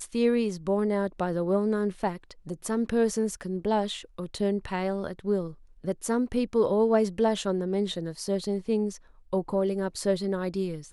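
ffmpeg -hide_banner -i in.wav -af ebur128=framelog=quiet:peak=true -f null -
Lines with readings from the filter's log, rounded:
Integrated loudness:
  I:         -28.1 LUFS
  Threshold: -38.3 LUFS
Loudness range:
  LRA:         2.5 LU
  Threshold: -48.3 LUFS
  LRA low:   -29.7 LUFS
  LRA high:  -27.1 LUFS
True peak:
  Peak:      -10.8 dBFS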